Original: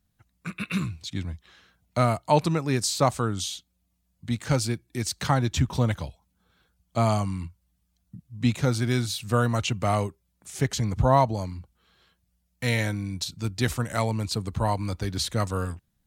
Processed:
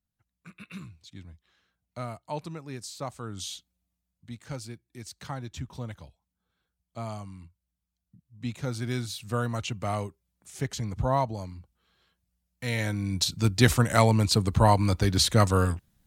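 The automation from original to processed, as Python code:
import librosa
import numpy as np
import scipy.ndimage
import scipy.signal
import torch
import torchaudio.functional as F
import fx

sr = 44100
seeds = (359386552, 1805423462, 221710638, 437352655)

y = fx.gain(x, sr, db=fx.line((3.17, -14.0), (3.52, -3.5), (4.34, -13.5), (8.21, -13.5), (8.88, -6.0), (12.66, -6.0), (13.25, 5.5)))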